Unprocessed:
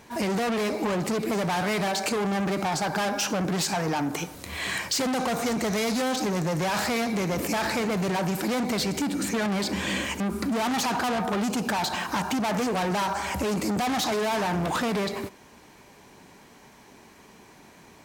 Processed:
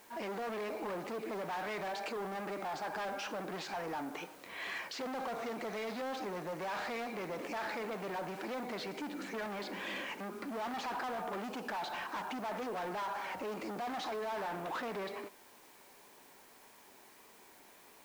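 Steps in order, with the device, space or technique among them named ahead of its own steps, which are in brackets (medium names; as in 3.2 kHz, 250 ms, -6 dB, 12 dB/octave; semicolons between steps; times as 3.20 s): tape answering machine (band-pass 360–3000 Hz; saturation -25.5 dBFS, distortion -14 dB; wow and flutter; white noise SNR 22 dB); trim -7.5 dB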